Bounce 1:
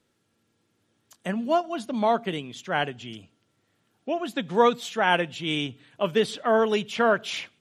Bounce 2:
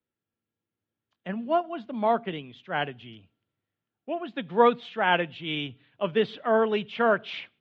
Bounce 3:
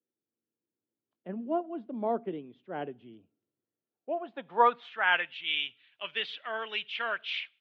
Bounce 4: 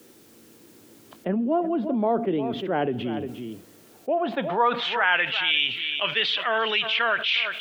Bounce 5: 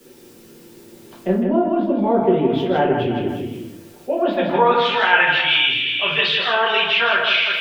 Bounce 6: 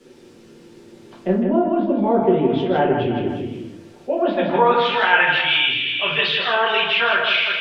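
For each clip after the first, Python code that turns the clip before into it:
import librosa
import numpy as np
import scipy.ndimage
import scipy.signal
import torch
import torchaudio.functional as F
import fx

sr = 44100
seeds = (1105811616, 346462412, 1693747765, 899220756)

y1 = scipy.signal.sosfilt(scipy.signal.butter(4, 3400.0, 'lowpass', fs=sr, output='sos'), x)
y1 = fx.band_widen(y1, sr, depth_pct=40)
y1 = y1 * 10.0 ** (-2.0 / 20.0)
y2 = fx.high_shelf(y1, sr, hz=4300.0, db=12.0)
y2 = fx.filter_sweep_bandpass(y2, sr, from_hz=350.0, to_hz=2600.0, start_s=3.69, end_s=5.5, q=1.5)
y3 = y2 + 10.0 ** (-21.0 / 20.0) * np.pad(y2, (int(353 * sr / 1000.0), 0))[:len(y2)]
y3 = fx.env_flatten(y3, sr, amount_pct=70)
y4 = y3 + 10.0 ** (-5.0 / 20.0) * np.pad(y3, (int(159 * sr / 1000.0), 0))[:len(y3)]
y4 = fx.room_shoebox(y4, sr, seeds[0], volume_m3=39.0, walls='mixed', distance_m=1.1)
y4 = y4 * 10.0 ** (-1.5 / 20.0)
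y5 = fx.air_absorb(y4, sr, metres=77.0)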